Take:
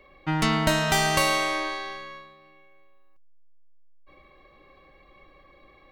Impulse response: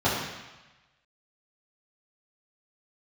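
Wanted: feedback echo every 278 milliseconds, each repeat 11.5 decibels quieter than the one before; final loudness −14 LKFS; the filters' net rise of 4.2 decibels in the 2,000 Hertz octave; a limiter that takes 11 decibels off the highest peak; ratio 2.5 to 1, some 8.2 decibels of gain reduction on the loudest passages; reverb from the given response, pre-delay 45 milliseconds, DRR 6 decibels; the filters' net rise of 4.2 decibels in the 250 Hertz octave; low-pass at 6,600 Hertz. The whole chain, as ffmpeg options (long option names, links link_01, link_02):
-filter_complex "[0:a]lowpass=6600,equalizer=frequency=250:width_type=o:gain=6,equalizer=frequency=2000:width_type=o:gain=5,acompressor=threshold=-28dB:ratio=2.5,alimiter=limit=-22.5dB:level=0:latency=1,aecho=1:1:278|556|834:0.266|0.0718|0.0194,asplit=2[link_01][link_02];[1:a]atrim=start_sample=2205,adelay=45[link_03];[link_02][link_03]afir=irnorm=-1:irlink=0,volume=-22dB[link_04];[link_01][link_04]amix=inputs=2:normalize=0,volume=16.5dB"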